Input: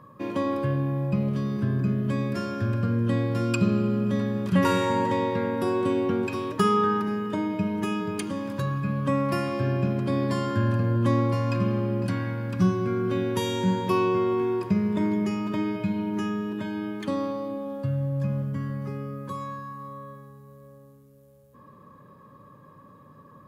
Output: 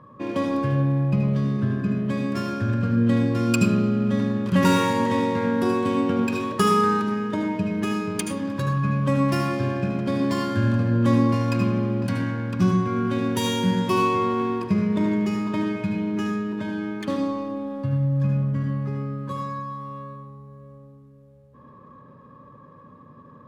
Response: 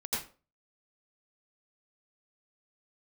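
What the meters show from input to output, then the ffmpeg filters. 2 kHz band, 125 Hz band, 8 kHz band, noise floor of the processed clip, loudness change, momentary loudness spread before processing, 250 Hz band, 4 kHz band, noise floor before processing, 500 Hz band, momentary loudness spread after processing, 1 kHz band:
+4.0 dB, +3.0 dB, +7.0 dB, −48 dBFS, +3.0 dB, 8 LU, +3.5 dB, +4.5 dB, −52 dBFS, +0.5 dB, 9 LU, +3.0 dB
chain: -filter_complex "[0:a]aemphasis=mode=production:type=50fm,adynamicsmooth=sensitivity=8:basefreq=2300,asplit=2[link_01][link_02];[1:a]atrim=start_sample=2205,asetrate=48510,aresample=44100[link_03];[link_02][link_03]afir=irnorm=-1:irlink=0,volume=-6dB[link_04];[link_01][link_04]amix=inputs=2:normalize=0"

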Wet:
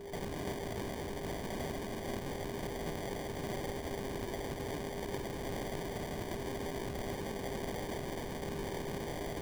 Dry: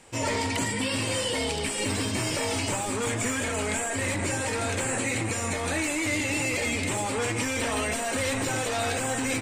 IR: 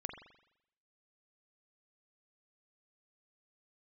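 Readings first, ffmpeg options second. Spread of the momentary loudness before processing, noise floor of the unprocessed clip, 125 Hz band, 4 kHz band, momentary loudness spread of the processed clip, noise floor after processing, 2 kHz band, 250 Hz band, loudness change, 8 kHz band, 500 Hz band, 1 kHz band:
2 LU, −30 dBFS, −10.0 dB, −16.0 dB, 1 LU, −42 dBFS, −17.5 dB, −10.5 dB, −12.5 dB, −21.0 dB, −8.5 dB, −11.0 dB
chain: -af "afftfilt=real='re*lt(hypot(re,im),0.0224)':imag='im*lt(hypot(re,im),0.0224)':win_size=1024:overlap=0.75,acrusher=samples=33:mix=1:aa=0.000001,acontrast=48,aeval=exprs='val(0)+0.00891*sin(2*PI*400*n/s)':channel_layout=same,volume=-3dB"

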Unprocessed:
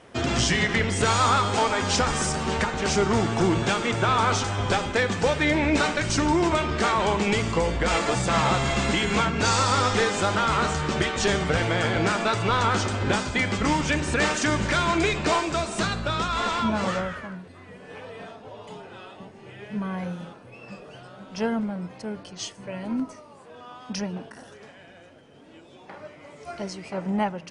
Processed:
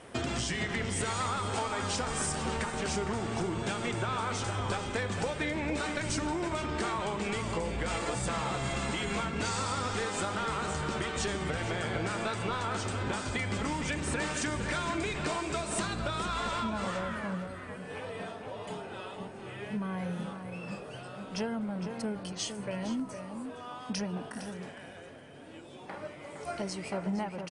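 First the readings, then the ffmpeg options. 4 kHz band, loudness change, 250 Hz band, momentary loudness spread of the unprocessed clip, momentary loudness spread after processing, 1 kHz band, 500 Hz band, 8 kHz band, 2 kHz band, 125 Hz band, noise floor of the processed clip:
−9.5 dB, −10.0 dB, −8.0 dB, 19 LU, 10 LU, −10.0 dB, −9.0 dB, −6.5 dB, −9.5 dB, −8.5 dB, −47 dBFS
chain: -filter_complex "[0:a]acompressor=threshold=-31dB:ratio=6,aexciter=amount=3.1:drive=4.2:freq=8400,asplit=2[link_01][link_02];[link_02]adelay=460.6,volume=-7dB,highshelf=frequency=4000:gain=-10.4[link_03];[link_01][link_03]amix=inputs=2:normalize=0,aresample=22050,aresample=44100"

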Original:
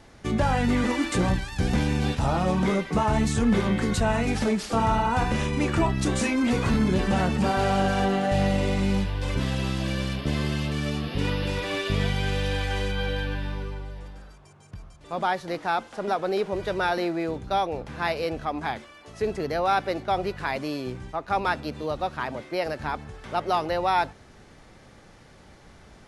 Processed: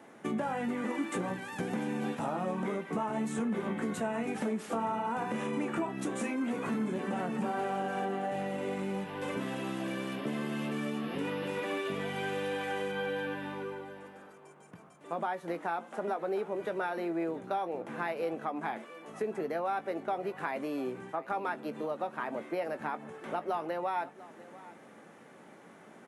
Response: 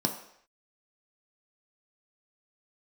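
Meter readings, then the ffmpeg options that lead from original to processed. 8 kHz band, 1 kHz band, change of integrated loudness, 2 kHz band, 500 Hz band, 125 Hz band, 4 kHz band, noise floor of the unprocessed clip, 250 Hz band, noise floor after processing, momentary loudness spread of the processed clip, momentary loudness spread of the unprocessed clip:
−11.5 dB, −8.0 dB, −9.0 dB, −8.5 dB, −6.5 dB, −16.5 dB, −13.5 dB, −51 dBFS, −8.5 dB, −54 dBFS, 11 LU, 8 LU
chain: -filter_complex "[0:a]highpass=frequency=190:width=0.5412,highpass=frequency=190:width=1.3066,equalizer=frequency=4700:width=1.2:gain=-15,acompressor=threshold=-32dB:ratio=4,asplit=2[link_01][link_02];[link_02]adelay=18,volume=-12dB[link_03];[link_01][link_03]amix=inputs=2:normalize=0,asplit=2[link_04][link_05];[link_05]aecho=0:1:697:0.119[link_06];[link_04][link_06]amix=inputs=2:normalize=0"

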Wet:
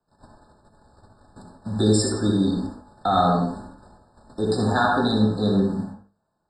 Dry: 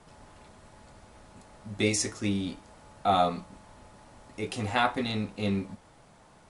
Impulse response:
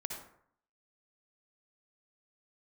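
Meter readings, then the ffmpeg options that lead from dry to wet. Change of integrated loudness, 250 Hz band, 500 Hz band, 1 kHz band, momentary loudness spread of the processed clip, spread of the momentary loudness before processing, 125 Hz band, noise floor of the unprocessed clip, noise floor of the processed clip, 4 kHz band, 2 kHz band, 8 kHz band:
+7.0 dB, +10.5 dB, +8.0 dB, +5.5 dB, 15 LU, 18 LU, +10.5 dB, −57 dBFS, −74 dBFS, +4.5 dB, +4.0 dB, +2.0 dB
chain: -filter_complex "[0:a]agate=range=-33dB:threshold=-49dB:ratio=16:detection=peak,asplit=2[link_01][link_02];[link_02]acompressor=threshold=-38dB:ratio=10,volume=-1dB[link_03];[link_01][link_03]amix=inputs=2:normalize=0,equalizer=frequency=250:width_type=o:width=2.5:gain=3,bandreject=frequency=50:width_type=h:width=6,bandreject=frequency=100:width_type=h:width=6,bandreject=frequency=150:width_type=h:width=6,bandreject=frequency=200:width_type=h:width=6,bandreject=frequency=250:width_type=h:width=6,bandreject=frequency=300:width_type=h:width=6,bandreject=frequency=350:width_type=h:width=6,bandreject=frequency=400:width_type=h:width=6,bandreject=frequency=450:width_type=h:width=6,bandreject=frequency=500:width_type=h:width=6,acrossover=split=230|1200[link_04][link_05][link_06];[link_05]alimiter=limit=-22dB:level=0:latency=1:release=126[link_07];[link_04][link_07][link_06]amix=inputs=3:normalize=0[link_08];[1:a]atrim=start_sample=2205,afade=type=out:start_time=0.31:duration=0.01,atrim=end_sample=14112[link_09];[link_08][link_09]afir=irnorm=-1:irlink=0,afftfilt=real='re*eq(mod(floor(b*sr/1024/1800),2),0)':imag='im*eq(mod(floor(b*sr/1024/1800),2),0)':win_size=1024:overlap=0.75,volume=7.5dB"

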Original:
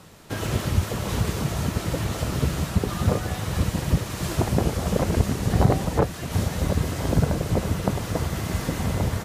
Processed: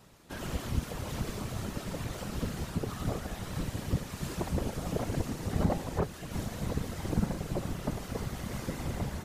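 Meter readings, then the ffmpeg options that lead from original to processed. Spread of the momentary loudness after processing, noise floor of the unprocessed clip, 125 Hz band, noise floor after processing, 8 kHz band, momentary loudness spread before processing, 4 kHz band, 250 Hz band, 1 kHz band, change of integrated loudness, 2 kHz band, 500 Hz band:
5 LU, −34 dBFS, −11.5 dB, −44 dBFS, −10.0 dB, 4 LU, −10.0 dB, −8.5 dB, −10.0 dB, −10.0 dB, −10.0 dB, −10.0 dB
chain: -af "afftfilt=real='hypot(re,im)*cos(2*PI*random(0))':imag='hypot(re,im)*sin(2*PI*random(1))':win_size=512:overlap=0.75,volume=-4dB"

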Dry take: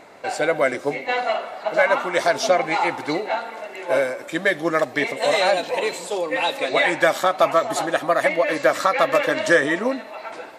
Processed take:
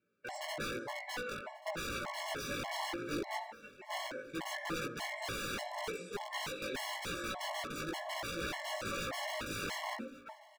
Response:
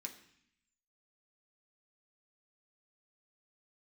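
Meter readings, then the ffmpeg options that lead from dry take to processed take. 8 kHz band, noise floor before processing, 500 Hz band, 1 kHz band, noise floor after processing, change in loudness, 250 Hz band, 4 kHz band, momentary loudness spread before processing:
−11.5 dB, −39 dBFS, −23.0 dB, −19.0 dB, −58 dBFS, −19.0 dB, −16.0 dB, −12.0 dB, 8 LU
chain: -filter_complex "[0:a]agate=range=-21dB:threshold=-32dB:ratio=16:detection=peak,highpass=frequency=50:width=0.5412,highpass=frequency=50:width=1.3066[link_01];[1:a]atrim=start_sample=2205,afade=type=out:start_time=0.34:duration=0.01,atrim=end_sample=15435[link_02];[link_01][link_02]afir=irnorm=-1:irlink=0,aeval=exprs='(mod(13.3*val(0)+1,2)-1)/13.3':channel_layout=same,flanger=delay=17:depth=2.3:speed=0.98,lowpass=frequency=2600:poles=1,aecho=1:1:1135:0.0708,afftfilt=real='re*gt(sin(2*PI*1.7*pts/sr)*(1-2*mod(floor(b*sr/1024/560),2)),0)':imag='im*gt(sin(2*PI*1.7*pts/sr)*(1-2*mod(floor(b*sr/1024/560),2)),0)':win_size=1024:overlap=0.75,volume=-2dB"

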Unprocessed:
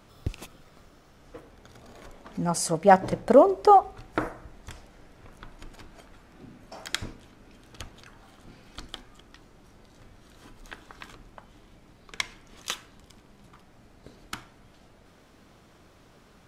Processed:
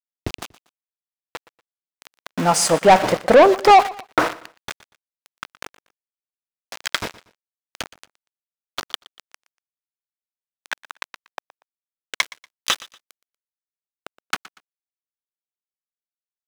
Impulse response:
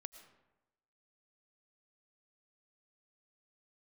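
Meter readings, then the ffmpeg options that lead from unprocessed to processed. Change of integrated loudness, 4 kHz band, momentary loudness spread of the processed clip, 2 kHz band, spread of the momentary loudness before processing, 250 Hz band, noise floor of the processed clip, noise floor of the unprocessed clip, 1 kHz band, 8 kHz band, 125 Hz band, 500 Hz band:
+6.0 dB, +11.5 dB, 23 LU, +11.5 dB, 23 LU, +3.5 dB, below −85 dBFS, −57 dBFS, +6.0 dB, +9.5 dB, +2.5 dB, +5.5 dB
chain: -filter_complex "[0:a]aeval=exprs='val(0)*gte(abs(val(0)),0.0178)':channel_layout=same,asplit=2[link_01][link_02];[link_02]highpass=frequency=720:poles=1,volume=23dB,asoftclip=type=tanh:threshold=-2.5dB[link_03];[link_01][link_03]amix=inputs=2:normalize=0,lowpass=frequency=4500:poles=1,volume=-6dB,aecho=1:1:119|238:0.106|0.0318"

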